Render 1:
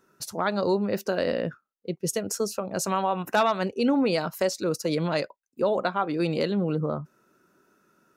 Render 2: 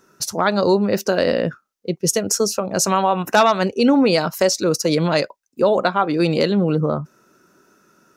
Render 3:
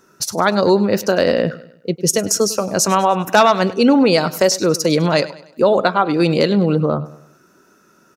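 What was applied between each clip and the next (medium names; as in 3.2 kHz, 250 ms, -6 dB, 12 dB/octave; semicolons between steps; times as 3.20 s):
peaking EQ 5.8 kHz +6 dB 0.6 oct; trim +8 dB
feedback delay 101 ms, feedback 43%, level -17.5 dB; trim +2.5 dB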